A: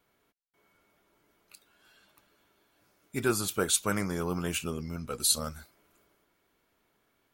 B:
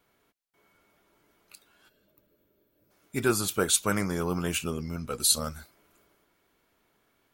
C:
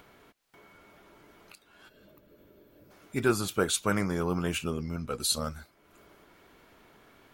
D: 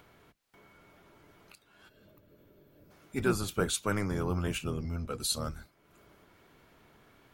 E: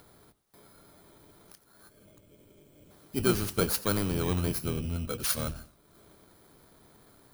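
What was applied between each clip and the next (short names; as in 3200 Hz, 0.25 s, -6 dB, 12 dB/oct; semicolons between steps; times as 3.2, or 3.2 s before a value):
spectral gain 1.89–2.91, 650–12000 Hz -14 dB; gain +2.5 dB
upward compressor, threshold -44 dBFS; high shelf 5500 Hz -9 dB
octaver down 1 oct, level -1 dB; gain -3.5 dB
FFT order left unsorted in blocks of 16 samples; warbling echo 89 ms, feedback 36%, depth 145 cents, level -17.5 dB; gain +2.5 dB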